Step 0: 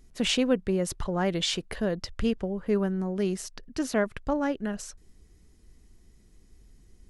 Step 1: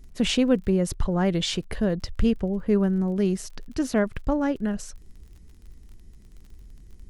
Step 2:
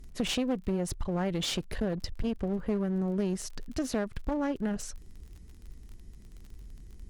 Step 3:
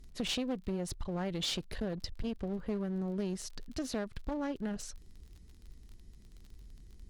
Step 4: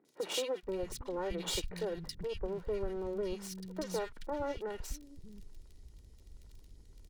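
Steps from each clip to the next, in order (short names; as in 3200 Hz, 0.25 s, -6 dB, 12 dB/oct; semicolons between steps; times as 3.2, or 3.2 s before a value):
low shelf 250 Hz +9.5 dB; crackle 40/s -42 dBFS
compressor 6:1, threshold -25 dBFS, peak gain reduction 10 dB; one-sided clip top -32.5 dBFS
bell 4100 Hz +5.5 dB 0.84 oct; gain -5.5 dB
minimum comb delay 2.1 ms; three bands offset in time mids, highs, lows 50/630 ms, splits 210/1700 Hz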